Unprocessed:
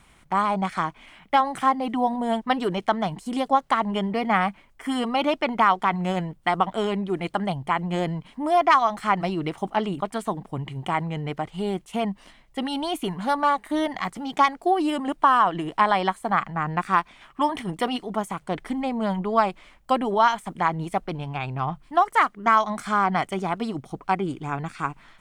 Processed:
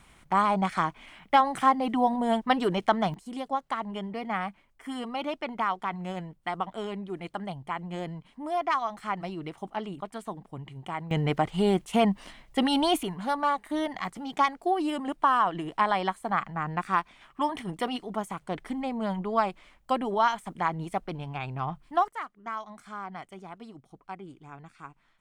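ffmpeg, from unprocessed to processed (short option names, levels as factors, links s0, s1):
-af "asetnsamples=n=441:p=0,asendcmd='3.14 volume volume -9.5dB;11.11 volume volume 3.5dB;13.03 volume volume -5dB;22.08 volume volume -17dB',volume=0.891"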